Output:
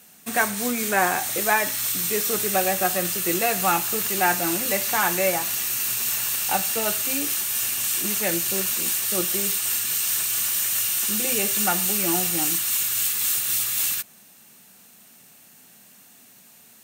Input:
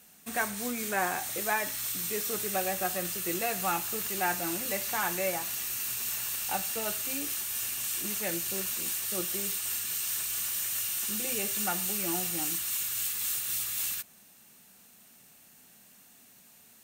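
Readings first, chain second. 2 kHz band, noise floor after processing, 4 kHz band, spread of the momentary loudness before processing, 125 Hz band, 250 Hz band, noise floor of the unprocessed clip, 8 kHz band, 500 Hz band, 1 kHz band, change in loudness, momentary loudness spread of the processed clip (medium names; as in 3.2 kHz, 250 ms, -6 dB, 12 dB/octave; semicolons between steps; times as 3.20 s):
+8.5 dB, -51 dBFS, +8.5 dB, 2 LU, +8.0 dB, +8.5 dB, -57 dBFS, +8.5 dB, +8.5 dB, +8.5 dB, +8.5 dB, 3 LU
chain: high-pass 85 Hz; in parallel at -8 dB: crossover distortion -47 dBFS; on the sum: trim +6 dB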